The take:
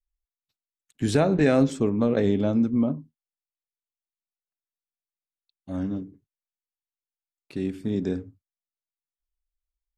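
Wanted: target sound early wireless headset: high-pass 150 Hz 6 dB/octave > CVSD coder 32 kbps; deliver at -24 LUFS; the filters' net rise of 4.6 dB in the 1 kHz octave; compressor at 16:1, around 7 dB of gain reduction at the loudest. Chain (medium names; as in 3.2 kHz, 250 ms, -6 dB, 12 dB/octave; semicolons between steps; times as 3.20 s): peaking EQ 1 kHz +7 dB; compression 16:1, threshold -20 dBFS; high-pass 150 Hz 6 dB/octave; CVSD coder 32 kbps; trim +5.5 dB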